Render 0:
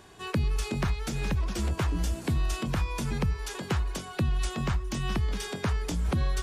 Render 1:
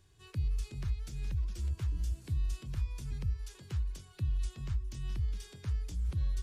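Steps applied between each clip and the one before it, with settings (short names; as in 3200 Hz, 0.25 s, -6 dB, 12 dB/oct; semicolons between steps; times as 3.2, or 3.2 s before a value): EQ curve 110 Hz 0 dB, 210 Hz -17 dB, 350 Hz -14 dB, 730 Hz -21 dB, 4700 Hz -9 dB; gain -4.5 dB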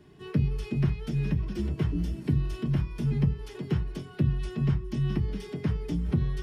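reverb RT60 0.15 s, pre-delay 3 ms, DRR -3 dB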